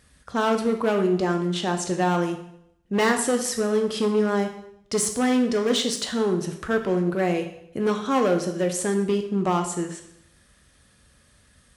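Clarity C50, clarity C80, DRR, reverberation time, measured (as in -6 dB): 8.5 dB, 12.0 dB, 5.0 dB, 0.75 s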